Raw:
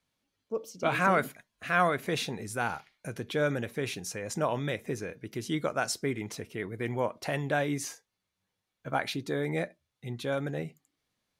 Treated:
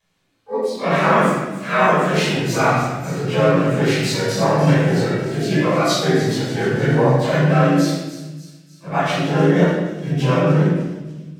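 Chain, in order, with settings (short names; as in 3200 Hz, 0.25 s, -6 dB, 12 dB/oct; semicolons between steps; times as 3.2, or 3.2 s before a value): inharmonic rescaling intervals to 89%; harmoniser +3 st -3 dB, +12 st -10 dB; vocal rider within 3 dB 0.5 s; on a send: thin delay 0.296 s, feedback 55%, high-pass 5000 Hz, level -9.5 dB; on the sum: shoebox room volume 680 m³, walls mixed, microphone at 5.4 m; gain +2 dB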